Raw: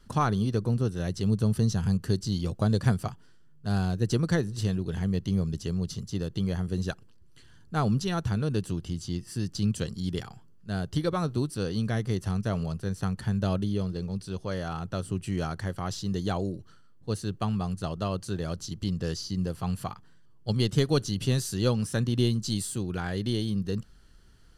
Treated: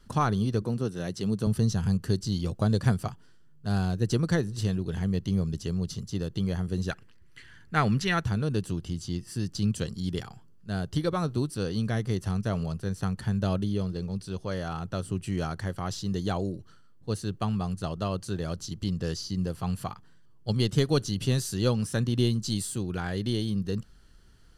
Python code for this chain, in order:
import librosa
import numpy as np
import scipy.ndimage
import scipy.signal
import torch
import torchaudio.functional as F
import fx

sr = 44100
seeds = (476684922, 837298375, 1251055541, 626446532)

y = fx.highpass(x, sr, hz=150.0, slope=12, at=(0.62, 1.47))
y = fx.peak_eq(y, sr, hz=2000.0, db=15.0, octaves=0.94, at=(6.91, 8.24))